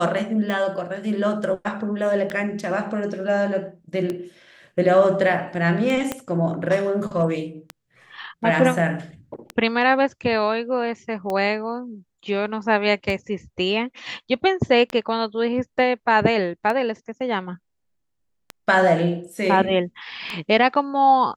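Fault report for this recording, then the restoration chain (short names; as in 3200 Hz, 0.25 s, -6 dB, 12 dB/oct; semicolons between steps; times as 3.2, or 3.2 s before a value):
tick 33 1/3 rpm -14 dBFS
6.12 pop -10 dBFS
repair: de-click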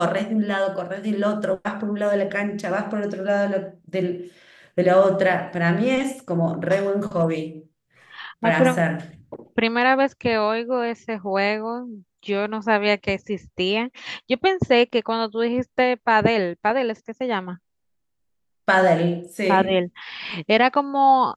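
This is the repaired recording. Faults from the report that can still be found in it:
6.12 pop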